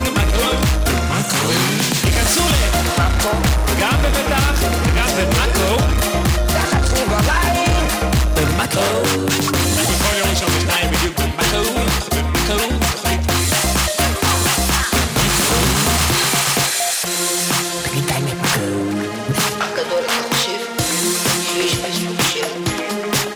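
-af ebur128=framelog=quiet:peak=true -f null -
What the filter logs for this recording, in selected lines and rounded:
Integrated loudness:
  I:         -16.4 LUFS
  Threshold: -26.4 LUFS
Loudness range:
  LRA:         3.0 LU
  Threshold: -36.3 LUFS
  LRA low:   -18.0 LUFS
  LRA high:  -15.0 LUFS
True peak:
  Peak:       -8.6 dBFS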